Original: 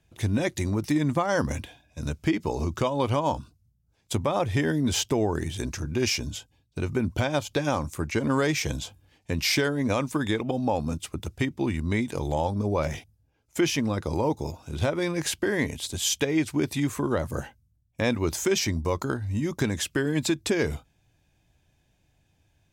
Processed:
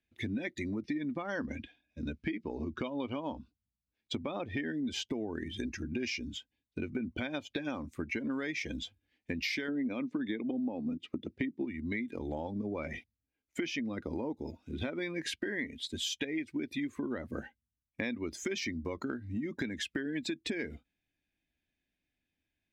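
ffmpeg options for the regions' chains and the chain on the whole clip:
-filter_complex "[0:a]asettb=1/sr,asplit=3[s0][s1][s2];[s0]atrim=end=0.834[s3];[s1]atrim=start=0.83:end=4.65,asetpts=PTS-STARTPTS,afade=t=in:d=0.004:c=qsin,afade=t=out:st=3.816:d=0.004:c=qsin,lowpass=6400,bandreject=f=2000:w=18[s4];[s2]atrim=start=4.646[s5];[s3][s4]acrossfade=d=0.004:c1=hsin:c2=qsin[s6];[s6][s5]acrossfade=d=0.004:c1=qsin:c2=hsin,asettb=1/sr,asplit=3[s7][s8][s9];[s7]atrim=end=9.684[s10];[s8]atrim=start=9.68:end=11.65,asetpts=PTS-STARTPTS,afade=t=in:d=0.004:c=qsin,afade=t=out:st=1.966:d=0.004:c=qsin,highpass=110,lowpass=5800,equalizer=f=260:w=0.57:g=7[s11];[s9]atrim=start=11.646[s12];[s10][s11]acrossfade=d=0.004:c1=hsin:c2=qsin[s13];[s13][s12]acrossfade=d=0.004:c1=qsin:c2=hsin,afftdn=nr=15:nf=-36,equalizer=f=125:t=o:w=1:g=-10,equalizer=f=250:t=o:w=1:g=11,equalizer=f=1000:t=o:w=1:g=-5,equalizer=f=2000:t=o:w=1:g=12,equalizer=f=4000:t=o:w=1:g=5,equalizer=f=8000:t=o:w=1:g=-5,acompressor=threshold=0.0447:ratio=6,volume=0.501"

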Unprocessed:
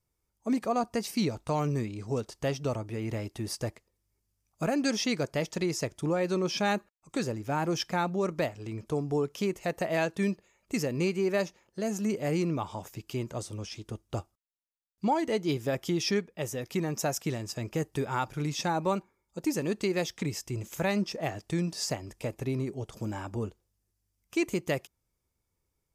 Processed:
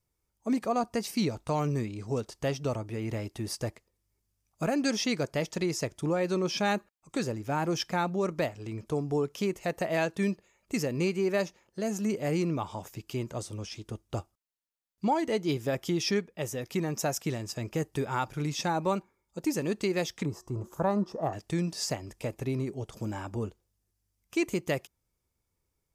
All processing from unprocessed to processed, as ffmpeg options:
-filter_complex "[0:a]asettb=1/sr,asplit=3[s0][s1][s2];[s0]atrim=end=20.254[s3];[s1]atrim=start=20.25:end=21.33,asetpts=PTS-STARTPTS,afade=t=in:d=0.004:c=qsin,afade=t=out:st=1.076:d=0.004:c=qsin,highshelf=f=1600:t=q:w=3:g=-12,bandreject=f=363.9:t=h:w=4,bandreject=f=727.8:t=h:w=4,bandreject=f=1091.7:t=h:w=4,bandreject=f=1455.6:t=h:w=4,bandreject=f=1819.5:t=h:w=4,bandreject=f=2183.4:t=h:w=4,bandreject=f=2547.3:t=h:w=4,bandreject=f=2911.2:t=h:w=4,bandreject=f=3275.1:t=h:w=4,bandreject=f=3639:t=h:w=4,bandreject=f=4002.9:t=h:w=4,bandreject=f=4366.8:t=h:w=4,bandreject=f=4730.7:t=h:w=4,bandreject=f=5094.6:t=h:w=4,bandreject=f=5458.5:t=h:w=4,bandreject=f=5822.4:t=h:w=4,bandreject=f=6186.3:t=h:w=4,bandreject=f=6550.2:t=h:w=4,bandreject=f=6914.1:t=h:w=4,bandreject=f=7278:t=h:w=4,bandreject=f=7641.9:t=h:w=4,bandreject=f=8005.8:t=h:w=4,bandreject=f=8369.7:t=h:w=4,bandreject=f=8733.6:t=h:w=4,bandreject=f=9097.5:t=h:w=4,bandreject=f=9461.4:t=h:w=4,bandreject=f=9825.3:t=h:w=4[s4];[s2]atrim=start=21.326[s5];[s3][s4]acrossfade=d=0.004:c1=hsin:c2=qsin[s6];[s6][s5]acrossfade=d=0.004:c1=qsin:c2=hsin"

